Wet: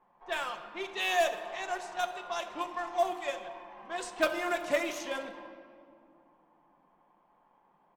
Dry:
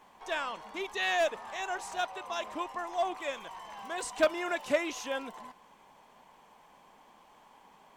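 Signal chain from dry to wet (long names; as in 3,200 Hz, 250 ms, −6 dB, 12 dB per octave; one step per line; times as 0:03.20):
mu-law and A-law mismatch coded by A
mains-hum notches 60/120/180/240/300/360/420/480/540 Hz
low-pass that shuts in the quiet parts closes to 1,300 Hz, open at −31 dBFS
high-shelf EQ 11,000 Hz +11.5 dB
comb filter 5.7 ms, depth 38%
convolution reverb RT60 2.3 s, pre-delay 7 ms, DRR 7 dB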